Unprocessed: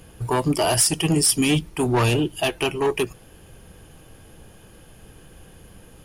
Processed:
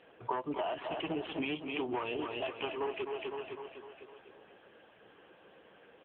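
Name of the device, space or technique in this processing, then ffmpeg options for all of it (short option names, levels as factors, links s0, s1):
voicemail: -filter_complex "[0:a]asettb=1/sr,asplit=3[s0][s1][s2];[s0]atrim=end=0.714[s3];[s1]atrim=start=0.71:end=1.5,asetpts=PTS-STARTPTS,afade=t=in:d=0.004:c=qsin,afade=t=out:st=0.786:d=0.004:c=qsin,lowpass=7600[s4];[s2]atrim=start=1.496[s5];[s3][s4]acrossfade=d=0.004:c1=hsin:c2=qsin[s6];[s6][s5]acrossfade=d=0.004:c1=qsin:c2=hsin,highpass=440,lowpass=2900,aecho=1:1:252|504|756|1008|1260|1512:0.355|0.195|0.107|0.059|0.0325|0.0179,acompressor=threshold=0.0355:ratio=12,volume=0.841" -ar 8000 -c:a libopencore_amrnb -b:a 6700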